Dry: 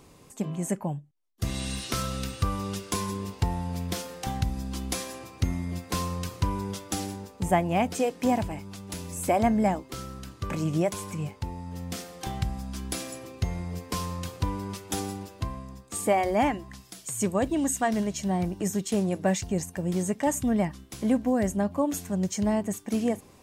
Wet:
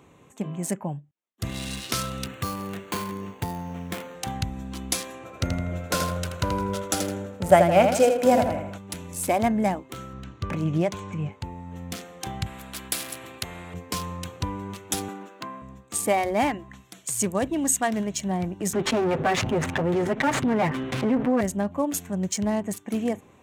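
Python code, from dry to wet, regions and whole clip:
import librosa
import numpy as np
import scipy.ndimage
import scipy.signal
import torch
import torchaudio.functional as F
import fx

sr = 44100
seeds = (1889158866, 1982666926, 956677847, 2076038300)

y = fx.chain(x, sr, fx.bandpass_edges(low_hz=110.0, high_hz=5200.0),
    fx.resample_bad(factor=8, down='none', up='hold'), at=(2.26, 4.15))
y = fx.chain(y, sr, fx.small_body(hz=(580.0, 1400.0), ring_ms=25, db=14),
    fx.echo_feedback(ms=81, feedback_pct=45, wet_db=-6), at=(5.25, 8.78))
y = fx.chain(y, sr, fx.lowpass(hz=6600.0, slope=24),
    fx.low_shelf(hz=160.0, db=6.0), at=(10.13, 11.32))
y = fx.chain(y, sr, fx.peak_eq(hz=6100.0, db=-11.0, octaves=0.29),
    fx.spectral_comp(ratio=2.0), at=(12.46, 13.74))
y = fx.chain(y, sr, fx.highpass(hz=200.0, slope=24),
    fx.peak_eq(hz=1400.0, db=6.5, octaves=0.73),
    fx.resample_linear(factor=2), at=(15.08, 15.62))
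y = fx.chain(y, sr, fx.lower_of_two(delay_ms=7.8),
    fx.lowpass(hz=2800.0, slope=12),
    fx.env_flatten(amount_pct=70), at=(18.73, 21.41))
y = fx.wiener(y, sr, points=9)
y = scipy.signal.sosfilt(scipy.signal.butter(2, 73.0, 'highpass', fs=sr, output='sos'), y)
y = fx.high_shelf(y, sr, hz=2200.0, db=8.5)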